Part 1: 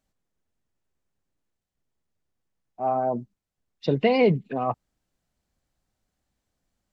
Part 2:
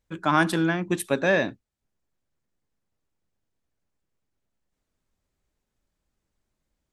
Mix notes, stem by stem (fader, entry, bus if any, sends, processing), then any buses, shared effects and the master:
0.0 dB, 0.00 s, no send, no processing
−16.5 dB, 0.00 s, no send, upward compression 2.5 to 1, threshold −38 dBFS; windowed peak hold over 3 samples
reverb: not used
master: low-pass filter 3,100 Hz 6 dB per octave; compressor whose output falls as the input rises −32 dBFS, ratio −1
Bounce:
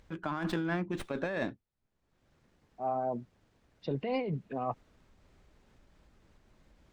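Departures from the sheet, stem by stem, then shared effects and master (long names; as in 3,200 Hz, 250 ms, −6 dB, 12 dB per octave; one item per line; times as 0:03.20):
stem 1 0.0 dB → −10.0 dB
stem 2 −16.5 dB → −7.0 dB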